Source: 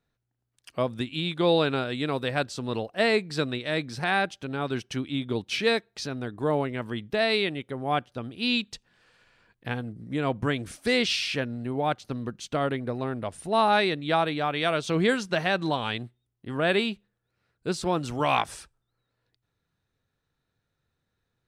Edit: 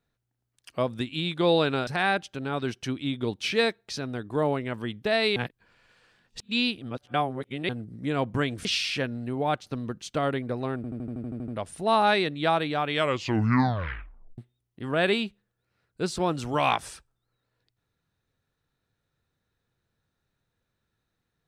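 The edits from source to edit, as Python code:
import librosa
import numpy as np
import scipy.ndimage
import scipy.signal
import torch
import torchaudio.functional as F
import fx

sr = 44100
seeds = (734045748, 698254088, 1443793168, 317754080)

y = fx.edit(x, sr, fx.cut(start_s=1.87, length_s=2.08),
    fx.reverse_span(start_s=7.44, length_s=2.33),
    fx.cut(start_s=10.73, length_s=0.3),
    fx.stutter(start_s=13.14, slice_s=0.08, count=10),
    fx.tape_stop(start_s=14.56, length_s=1.48), tone=tone)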